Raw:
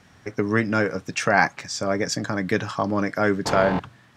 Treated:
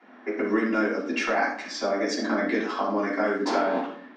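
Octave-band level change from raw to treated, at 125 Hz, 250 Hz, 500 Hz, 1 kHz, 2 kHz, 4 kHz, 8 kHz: under -15 dB, -1.0 dB, -2.5 dB, -3.0 dB, -4.5 dB, -3.5 dB, -8.5 dB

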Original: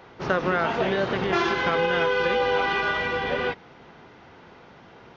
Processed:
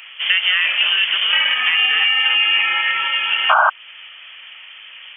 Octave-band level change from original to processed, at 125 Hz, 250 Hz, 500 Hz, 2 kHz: under -25 dB, under -20 dB, -11.0 dB, +10.5 dB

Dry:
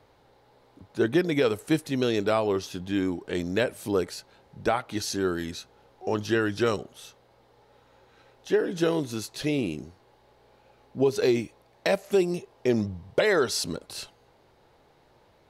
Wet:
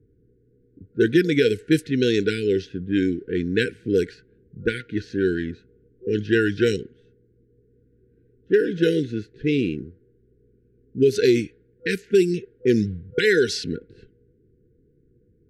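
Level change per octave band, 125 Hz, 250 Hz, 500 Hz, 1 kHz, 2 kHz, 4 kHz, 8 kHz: +5.5, +5.5, +4.5, -9.0, +5.0, +2.5, -3.0 dB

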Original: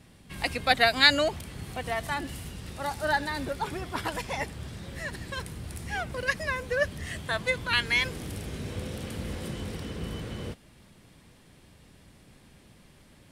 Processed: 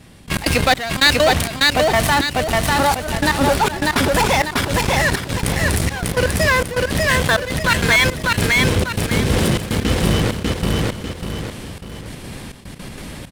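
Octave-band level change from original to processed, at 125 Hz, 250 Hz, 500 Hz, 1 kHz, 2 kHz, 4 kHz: +17.0, +16.5, +13.0, +13.0, +11.0, +10.5 dB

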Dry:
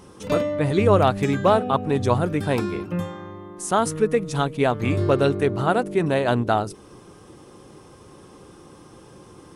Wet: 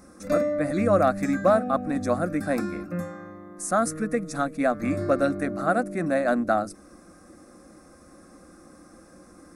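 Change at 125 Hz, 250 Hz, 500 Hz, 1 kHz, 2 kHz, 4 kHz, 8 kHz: -10.0, -1.5, -3.0, -3.5, -1.5, -12.0, -1.5 dB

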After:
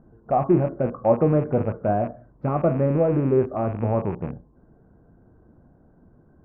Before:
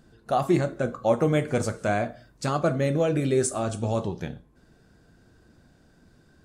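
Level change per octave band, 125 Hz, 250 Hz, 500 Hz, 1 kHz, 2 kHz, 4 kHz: +3.5 dB, +3.5 dB, +3.5 dB, +2.5 dB, -8.5 dB, under -20 dB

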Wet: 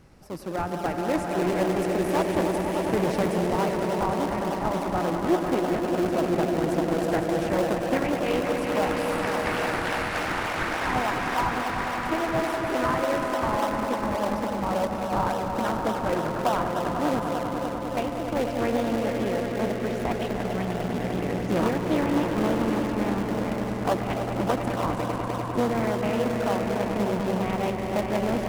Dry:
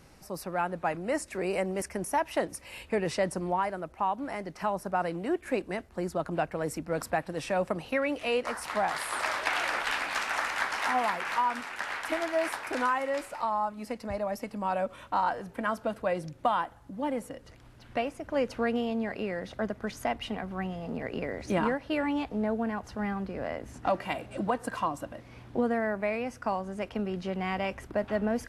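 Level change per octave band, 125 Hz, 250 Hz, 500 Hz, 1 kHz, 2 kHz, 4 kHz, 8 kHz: +10.0, +7.5, +6.0, +3.5, +2.0, +3.5, +3.0 dB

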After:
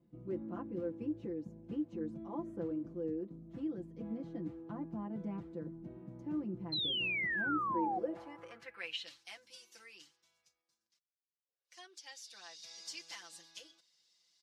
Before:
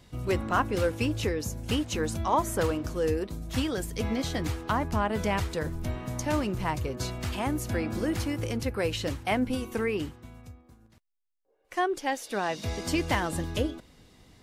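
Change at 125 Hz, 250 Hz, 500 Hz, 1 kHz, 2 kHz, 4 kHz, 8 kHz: -18.0, -9.5, -14.0, -12.0, -7.0, -4.5, -16.5 dB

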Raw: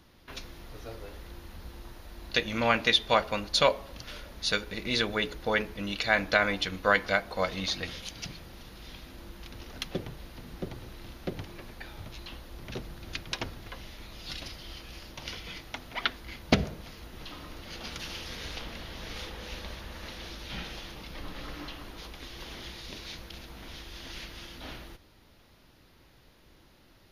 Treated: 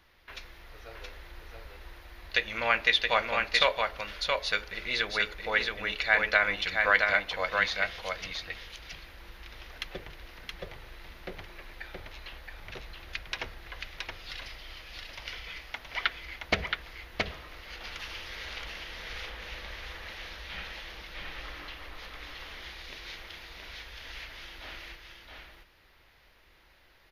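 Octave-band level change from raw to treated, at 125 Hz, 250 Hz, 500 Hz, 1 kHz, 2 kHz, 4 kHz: -7.5, -11.0, -3.0, -0.5, +3.5, -0.5 dB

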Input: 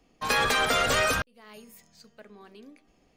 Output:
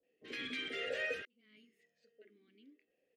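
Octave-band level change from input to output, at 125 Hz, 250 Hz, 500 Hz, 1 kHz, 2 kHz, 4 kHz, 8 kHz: -27.5, -13.0, -13.5, -28.5, -14.0, -15.5, -29.0 dB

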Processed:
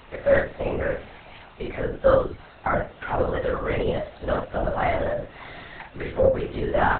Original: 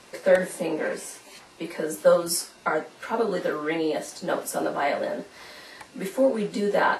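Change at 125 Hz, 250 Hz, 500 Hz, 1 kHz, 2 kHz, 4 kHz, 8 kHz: +9.0 dB, -1.5 dB, +1.0 dB, +1.5 dB, +1.0 dB, -5.0 dB, under -40 dB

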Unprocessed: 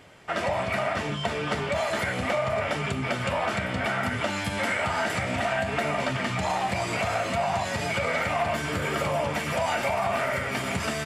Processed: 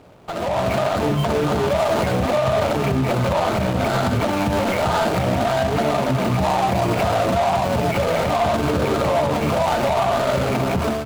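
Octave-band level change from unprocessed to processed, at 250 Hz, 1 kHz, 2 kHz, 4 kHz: +10.5, +7.5, 0.0, +4.0 dB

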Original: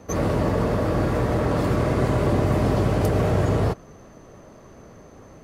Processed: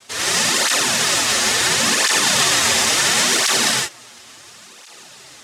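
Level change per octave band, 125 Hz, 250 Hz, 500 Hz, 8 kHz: -14.5, -6.0, -4.5, +27.0 dB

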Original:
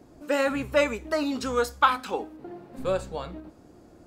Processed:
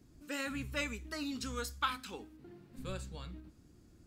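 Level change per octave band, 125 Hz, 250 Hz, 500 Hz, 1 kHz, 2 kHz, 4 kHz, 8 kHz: -4.5, -11.0, -20.0, -15.0, -10.0, -6.5, -5.0 dB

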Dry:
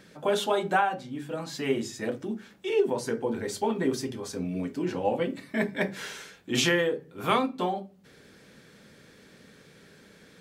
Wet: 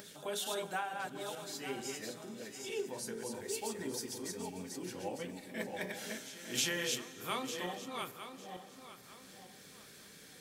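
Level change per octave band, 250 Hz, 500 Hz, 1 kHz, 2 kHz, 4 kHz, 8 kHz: -13.5, -13.0, -12.0, -9.5, -5.5, -0.5 dB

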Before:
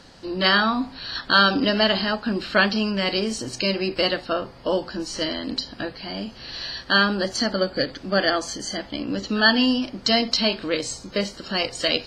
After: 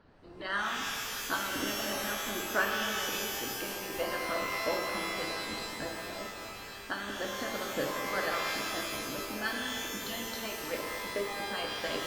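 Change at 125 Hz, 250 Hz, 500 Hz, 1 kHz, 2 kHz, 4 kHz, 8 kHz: -15.5, -16.5, -11.5, -9.0, -10.0, -13.5, -2.5 dB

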